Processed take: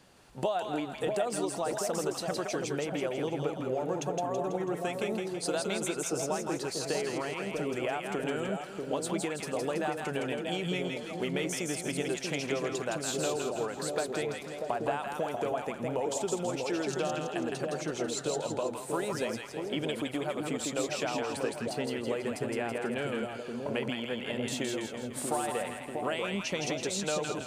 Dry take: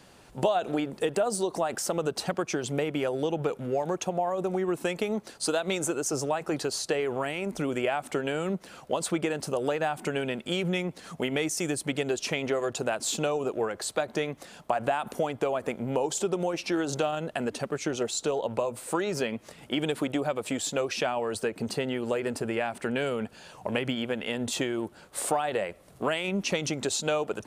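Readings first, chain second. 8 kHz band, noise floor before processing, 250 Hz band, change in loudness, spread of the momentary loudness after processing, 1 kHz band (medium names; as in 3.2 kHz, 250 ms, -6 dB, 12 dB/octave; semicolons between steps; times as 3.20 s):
-3.0 dB, -54 dBFS, -3.0 dB, -3.5 dB, 3 LU, -3.0 dB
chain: two-band feedback delay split 770 Hz, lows 640 ms, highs 164 ms, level -3 dB; trim -5.5 dB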